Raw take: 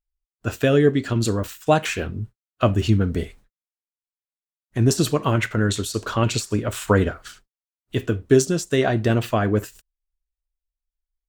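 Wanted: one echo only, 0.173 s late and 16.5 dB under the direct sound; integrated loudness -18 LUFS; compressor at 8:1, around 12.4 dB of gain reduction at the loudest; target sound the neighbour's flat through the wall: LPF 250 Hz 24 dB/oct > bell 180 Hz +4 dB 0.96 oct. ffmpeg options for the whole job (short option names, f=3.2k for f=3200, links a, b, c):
-af "acompressor=threshold=-24dB:ratio=8,lowpass=f=250:w=0.5412,lowpass=f=250:w=1.3066,equalizer=f=180:t=o:w=0.96:g=4,aecho=1:1:173:0.15,volume=14dB"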